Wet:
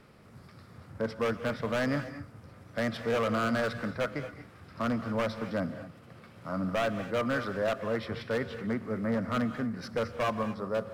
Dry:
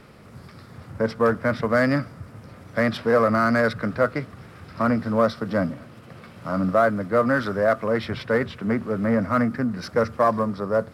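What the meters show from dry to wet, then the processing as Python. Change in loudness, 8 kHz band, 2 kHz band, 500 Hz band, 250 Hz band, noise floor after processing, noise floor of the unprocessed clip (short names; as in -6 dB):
-9.0 dB, n/a, -9.0 dB, -9.5 dB, -8.5 dB, -54 dBFS, -46 dBFS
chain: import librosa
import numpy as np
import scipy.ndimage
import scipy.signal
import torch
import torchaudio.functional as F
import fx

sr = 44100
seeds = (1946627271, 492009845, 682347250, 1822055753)

y = 10.0 ** (-14.0 / 20.0) * (np.abs((x / 10.0 ** (-14.0 / 20.0) + 3.0) % 4.0 - 2.0) - 1.0)
y = fx.rev_gated(y, sr, seeds[0], gate_ms=260, shape='rising', drr_db=10.0)
y = F.gain(torch.from_numpy(y), -8.5).numpy()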